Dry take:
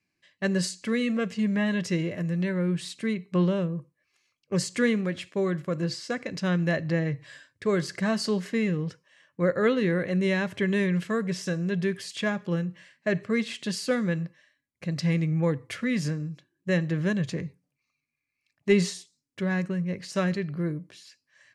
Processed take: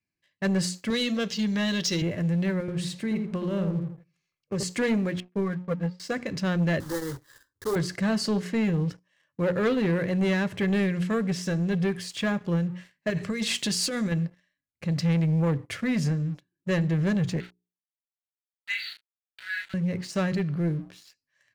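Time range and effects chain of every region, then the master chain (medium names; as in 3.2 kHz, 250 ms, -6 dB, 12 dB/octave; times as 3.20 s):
0.90–2.02 s: high-pass 260 Hz 6 dB/octave + high-order bell 4.5 kHz +13 dB 1.3 oct
2.60–4.63 s: compression, threshold -27 dBFS + filtered feedback delay 82 ms, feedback 33%, low-pass 1.1 kHz, level -3.5 dB
5.20–6.00 s: low-pass 2.6 kHz + comb 4.3 ms, depth 71% + upward expansion 2.5:1, over -36 dBFS
6.80–7.76 s: block-companded coder 3-bit + static phaser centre 660 Hz, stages 6 + transformer saturation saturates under 550 Hz
13.10–14.12 s: peaking EQ 8.5 kHz +9.5 dB 2.7 oct + compressor with a negative ratio -29 dBFS
17.40–19.74 s: small samples zeroed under -33 dBFS + brick-wall FIR band-pass 1.3–4.7 kHz + doubling 35 ms -4 dB
whole clip: bass shelf 160 Hz +8.5 dB; hum notches 60/120/180/240/300/360/420 Hz; waveshaping leveller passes 2; trim -6.5 dB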